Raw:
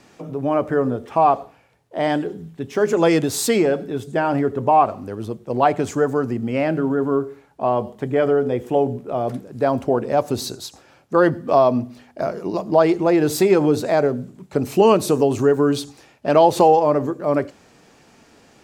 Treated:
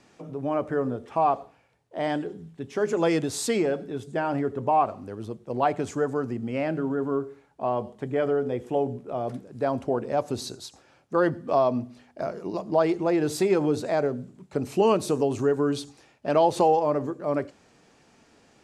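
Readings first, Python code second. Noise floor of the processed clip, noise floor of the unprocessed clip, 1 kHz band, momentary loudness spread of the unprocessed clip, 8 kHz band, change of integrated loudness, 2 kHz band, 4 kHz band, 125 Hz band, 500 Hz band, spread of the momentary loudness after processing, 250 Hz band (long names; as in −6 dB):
−60 dBFS, −53 dBFS, −7.0 dB, 12 LU, −7.0 dB, −7.0 dB, −7.0 dB, −7.0 dB, −7.0 dB, −7.0 dB, 12 LU, −7.0 dB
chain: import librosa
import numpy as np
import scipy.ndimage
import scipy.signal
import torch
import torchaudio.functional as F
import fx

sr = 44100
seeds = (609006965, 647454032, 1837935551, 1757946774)

y = scipy.signal.sosfilt(scipy.signal.butter(4, 11000.0, 'lowpass', fs=sr, output='sos'), x)
y = y * librosa.db_to_amplitude(-7.0)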